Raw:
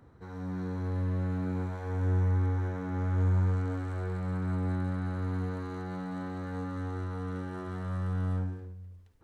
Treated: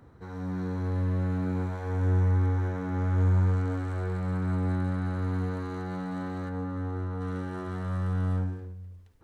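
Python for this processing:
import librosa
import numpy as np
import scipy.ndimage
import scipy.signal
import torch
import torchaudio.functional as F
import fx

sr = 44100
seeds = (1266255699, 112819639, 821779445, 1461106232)

y = fx.high_shelf(x, sr, hz=2100.0, db=-10.5, at=(6.48, 7.2), fade=0.02)
y = y * 10.0 ** (3.0 / 20.0)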